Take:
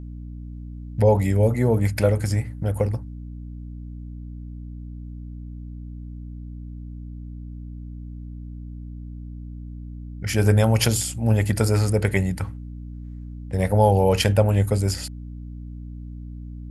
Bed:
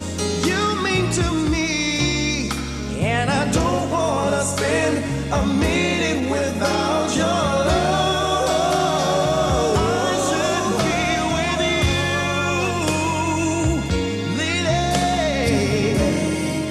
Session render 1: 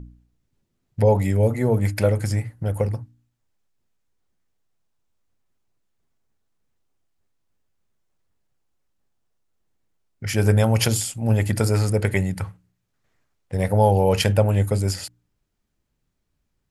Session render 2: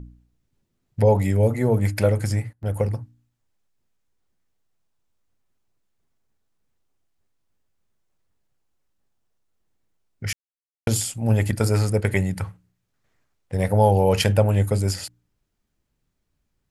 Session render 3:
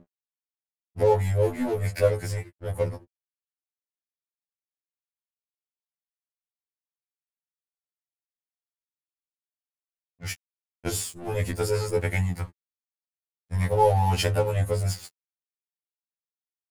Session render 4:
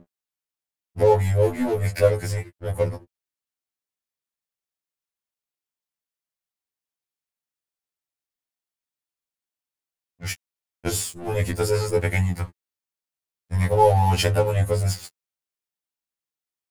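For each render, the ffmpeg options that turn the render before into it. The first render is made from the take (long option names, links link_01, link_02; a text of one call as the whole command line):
ffmpeg -i in.wav -af "bandreject=frequency=60:width_type=h:width=4,bandreject=frequency=120:width_type=h:width=4,bandreject=frequency=180:width_type=h:width=4,bandreject=frequency=240:width_type=h:width=4,bandreject=frequency=300:width_type=h:width=4" out.wav
ffmpeg -i in.wav -filter_complex "[0:a]asettb=1/sr,asplit=3[link_01][link_02][link_03];[link_01]atrim=end=11.514[link_04];[link_02]atrim=start=11.51:end=12.09,asetpts=PTS-STARTPTS,afade=type=in:duration=0.004:curve=qsin,afade=type=out:start_time=0.576:duration=0.004:curve=qsin,agate=range=-33dB:threshold=-21dB:ratio=3:release=100:detection=peak[link_05];[link_03]atrim=start=12.086[link_06];[link_04][link_05]acrossfade=duration=0.004:curve1=hsin:curve2=qsin[link_07];[link_07][link_06]acrossfade=duration=0.004:curve1=qsin:curve2=hsin,asplit=5[link_08][link_09][link_10][link_11][link_12];[link_08]atrim=end=2.53,asetpts=PTS-STARTPTS,afade=type=out:start_time=2.26:duration=0.27:curve=log:silence=0.11885[link_13];[link_09]atrim=start=2.53:end=2.63,asetpts=PTS-STARTPTS,volume=-18.5dB[link_14];[link_10]atrim=start=2.63:end=10.33,asetpts=PTS-STARTPTS,afade=type=in:duration=0.27:curve=log:silence=0.11885,afade=type=out:start_time=7.696:duration=0.004:curve=hsin[link_15];[link_11]atrim=start=10.33:end=10.87,asetpts=PTS-STARTPTS,volume=0[link_16];[link_12]atrim=start=10.87,asetpts=PTS-STARTPTS,afade=type=in:duration=0.004:curve=hsin[link_17];[link_13][link_14][link_15][link_16][link_17]concat=n=5:v=0:a=1" out.wav
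ffmpeg -i in.wav -af "aeval=exprs='sgn(val(0))*max(abs(val(0))-0.0188,0)':channel_layout=same,afftfilt=real='re*2*eq(mod(b,4),0)':imag='im*2*eq(mod(b,4),0)':win_size=2048:overlap=0.75" out.wav
ffmpeg -i in.wav -af "volume=3.5dB" out.wav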